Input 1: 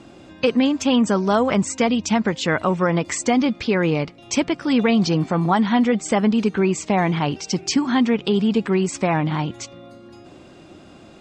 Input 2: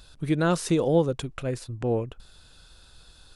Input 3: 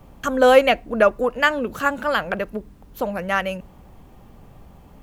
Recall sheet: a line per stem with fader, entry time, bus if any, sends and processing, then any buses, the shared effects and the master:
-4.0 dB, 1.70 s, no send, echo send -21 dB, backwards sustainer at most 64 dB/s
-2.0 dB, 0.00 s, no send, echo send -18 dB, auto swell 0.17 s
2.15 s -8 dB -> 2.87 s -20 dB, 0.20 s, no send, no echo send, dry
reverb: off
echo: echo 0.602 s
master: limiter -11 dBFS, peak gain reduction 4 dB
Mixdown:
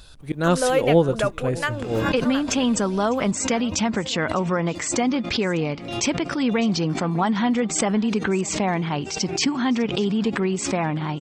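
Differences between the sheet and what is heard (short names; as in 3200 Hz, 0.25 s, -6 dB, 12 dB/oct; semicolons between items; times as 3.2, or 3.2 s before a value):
stem 2 -2.0 dB -> +4.5 dB; master: missing limiter -11 dBFS, peak gain reduction 4 dB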